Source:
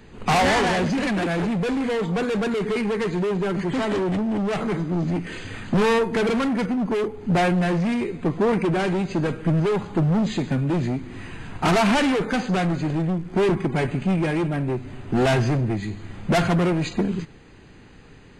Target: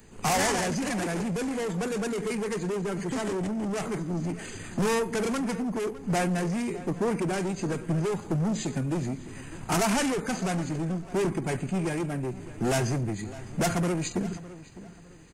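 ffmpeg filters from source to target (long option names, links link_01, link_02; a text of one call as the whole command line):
ffmpeg -i in.wav -filter_complex "[0:a]atempo=1.2,asplit=2[link_01][link_02];[link_02]adelay=607,lowpass=frequency=3300:poles=1,volume=-16.5dB,asplit=2[link_03][link_04];[link_04]adelay=607,lowpass=frequency=3300:poles=1,volume=0.32,asplit=2[link_05][link_06];[link_06]adelay=607,lowpass=frequency=3300:poles=1,volume=0.32[link_07];[link_01][link_03][link_05][link_07]amix=inputs=4:normalize=0,acrossover=split=350[link_08][link_09];[link_09]aexciter=amount=3.7:drive=7.4:freq=5400[link_10];[link_08][link_10]amix=inputs=2:normalize=0,volume=-6.5dB" out.wav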